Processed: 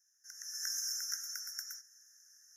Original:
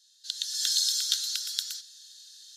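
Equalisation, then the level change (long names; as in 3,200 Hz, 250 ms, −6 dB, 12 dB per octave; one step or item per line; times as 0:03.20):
Chebyshev band-stop filter 2,400–5,400 Hz, order 5
phaser with its sweep stopped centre 2,400 Hz, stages 6
0.0 dB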